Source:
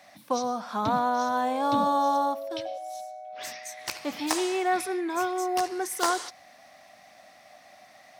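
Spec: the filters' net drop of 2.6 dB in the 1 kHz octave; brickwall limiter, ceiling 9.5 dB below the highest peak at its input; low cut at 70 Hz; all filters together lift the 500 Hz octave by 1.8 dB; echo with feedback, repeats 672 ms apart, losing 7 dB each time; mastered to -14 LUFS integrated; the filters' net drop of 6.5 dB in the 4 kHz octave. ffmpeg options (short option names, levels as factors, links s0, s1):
-af "highpass=70,equalizer=f=500:t=o:g=4,equalizer=f=1000:t=o:g=-5,equalizer=f=4000:t=o:g=-8.5,alimiter=limit=0.0891:level=0:latency=1,aecho=1:1:672|1344|2016|2688|3360:0.447|0.201|0.0905|0.0407|0.0183,volume=6.68"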